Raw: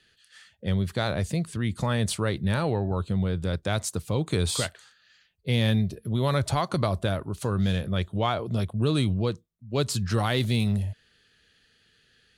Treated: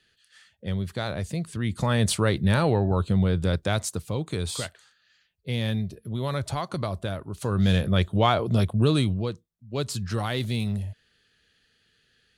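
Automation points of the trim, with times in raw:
1.30 s -3 dB
2.09 s +4 dB
3.48 s +4 dB
4.33 s -4 dB
7.25 s -4 dB
7.74 s +5 dB
8.76 s +5 dB
9.29 s -3 dB

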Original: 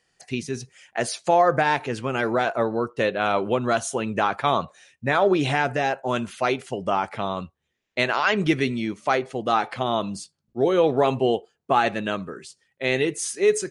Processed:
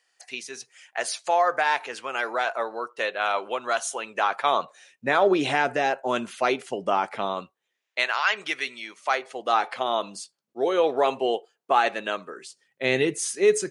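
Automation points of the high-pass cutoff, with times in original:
4.08 s 720 Hz
5.11 s 250 Hz
7.25 s 250 Hz
8.10 s 970 Hz
8.89 s 970 Hz
9.60 s 450 Hz
12.31 s 450 Hz
12.90 s 120 Hz

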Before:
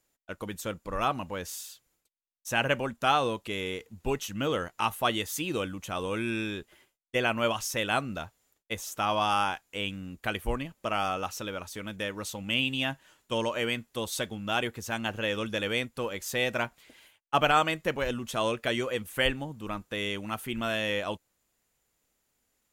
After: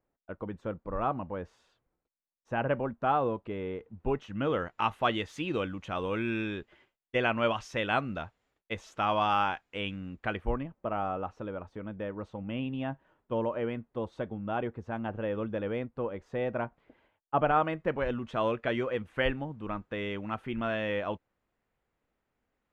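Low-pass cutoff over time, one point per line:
3.81 s 1.1 kHz
4.88 s 2.7 kHz
10.05 s 2.7 kHz
10.81 s 1 kHz
17.34 s 1 kHz
18.16 s 1.9 kHz

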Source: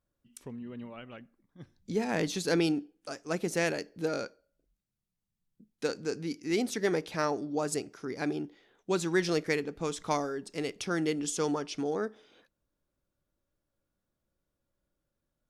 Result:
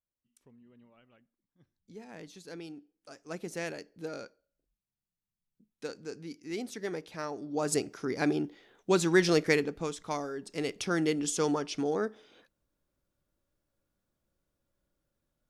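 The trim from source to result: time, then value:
2.69 s -17 dB
3.26 s -7.5 dB
7.31 s -7.5 dB
7.76 s +4 dB
9.63 s +4 dB
10.04 s -5.5 dB
10.69 s +1.5 dB

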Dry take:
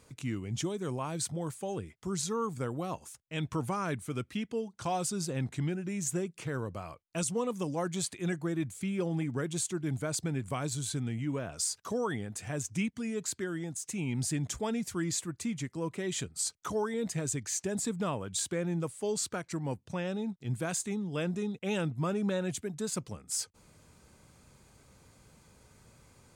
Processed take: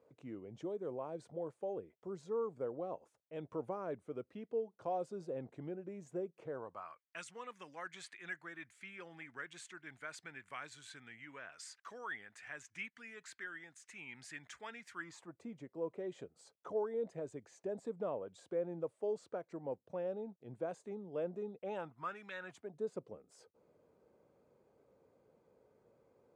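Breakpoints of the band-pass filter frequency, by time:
band-pass filter, Q 2.4
6.48 s 520 Hz
7.01 s 1.8 kHz
14.92 s 1.8 kHz
15.38 s 540 Hz
21.59 s 540 Hz
22.29 s 2.3 kHz
22.76 s 480 Hz

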